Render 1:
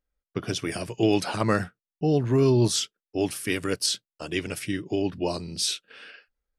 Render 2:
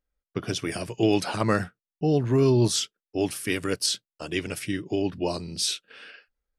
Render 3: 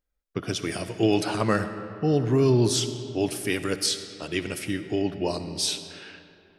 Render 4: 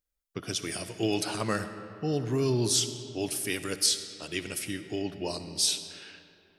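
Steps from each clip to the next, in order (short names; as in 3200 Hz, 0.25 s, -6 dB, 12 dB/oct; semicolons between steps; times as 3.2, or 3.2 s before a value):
nothing audible
digital reverb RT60 2.8 s, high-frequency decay 0.6×, pre-delay 25 ms, DRR 10 dB
high shelf 3500 Hz +11 dB; gain -7 dB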